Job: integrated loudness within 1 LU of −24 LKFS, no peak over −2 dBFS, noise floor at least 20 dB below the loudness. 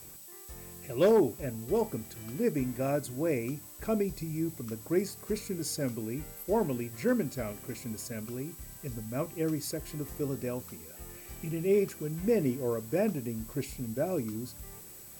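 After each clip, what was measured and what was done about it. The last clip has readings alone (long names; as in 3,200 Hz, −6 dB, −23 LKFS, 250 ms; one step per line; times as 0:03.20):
interfering tone 7,900 Hz; level of the tone −56 dBFS; background noise floor −49 dBFS; target noise floor −53 dBFS; integrated loudness −32.5 LKFS; sample peak −16.5 dBFS; target loudness −24.0 LKFS
→ notch filter 7,900 Hz, Q 30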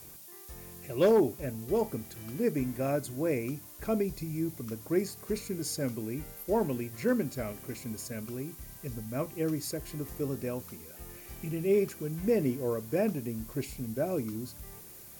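interfering tone none found; background noise floor −49 dBFS; target noise floor −53 dBFS
→ noise reduction from a noise print 6 dB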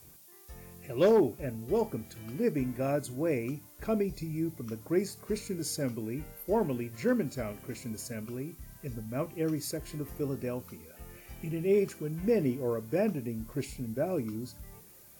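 background noise floor −55 dBFS; integrated loudness −32.5 LKFS; sample peak −17.0 dBFS; target loudness −24.0 LKFS
→ level +8.5 dB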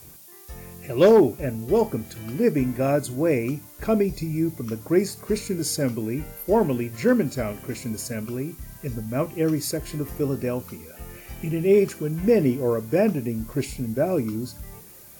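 integrated loudness −24.0 LKFS; sample peak −8.5 dBFS; background noise floor −46 dBFS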